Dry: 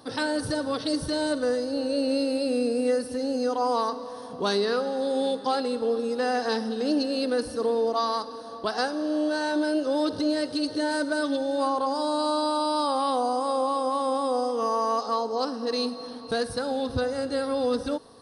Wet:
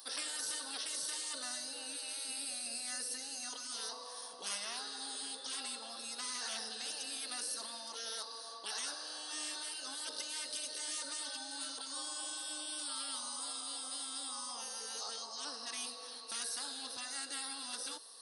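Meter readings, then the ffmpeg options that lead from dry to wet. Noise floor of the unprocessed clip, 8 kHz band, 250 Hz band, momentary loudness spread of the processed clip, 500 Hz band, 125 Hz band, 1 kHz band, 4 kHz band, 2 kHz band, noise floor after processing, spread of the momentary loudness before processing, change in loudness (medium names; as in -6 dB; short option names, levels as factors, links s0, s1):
-39 dBFS, +5.5 dB, -29.0 dB, 3 LU, -29.5 dB, no reading, -21.0 dB, -5.0 dB, -12.0 dB, -48 dBFS, 4 LU, -13.0 dB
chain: -af "aderivative,afftfilt=real='re*lt(hypot(re,im),0.0158)':imag='im*lt(hypot(re,im),0.0158)':win_size=1024:overlap=0.75,highpass=210,lowshelf=f=320:g=-4.5,afftfilt=real='re*gte(hypot(re,im),0.0000891)':imag='im*gte(hypot(re,im),0.0000891)':win_size=1024:overlap=0.75,volume=2.37"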